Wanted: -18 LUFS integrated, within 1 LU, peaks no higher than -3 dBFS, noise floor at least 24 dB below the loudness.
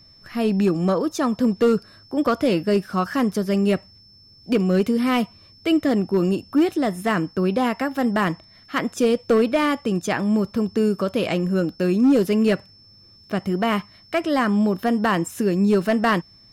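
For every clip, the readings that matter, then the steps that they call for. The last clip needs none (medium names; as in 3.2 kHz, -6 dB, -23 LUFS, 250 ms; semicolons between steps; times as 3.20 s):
clipped samples 0.7%; clipping level -11.5 dBFS; steady tone 5.3 kHz; tone level -49 dBFS; loudness -21.5 LUFS; peak level -11.5 dBFS; loudness target -18.0 LUFS
-> clip repair -11.5 dBFS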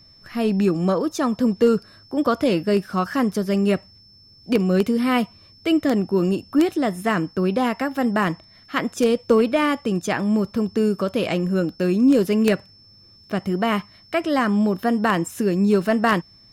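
clipped samples 0.0%; steady tone 5.3 kHz; tone level -49 dBFS
-> band-stop 5.3 kHz, Q 30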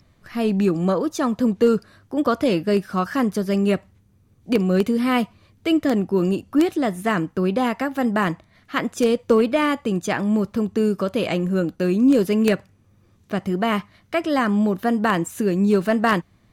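steady tone not found; loudness -21.5 LUFS; peak level -2.5 dBFS; loudness target -18.0 LUFS
-> trim +3.5 dB; peak limiter -3 dBFS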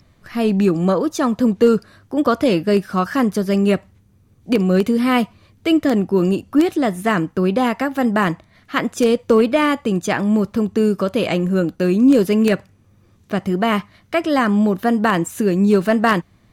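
loudness -18.0 LUFS; peak level -3.0 dBFS; noise floor -55 dBFS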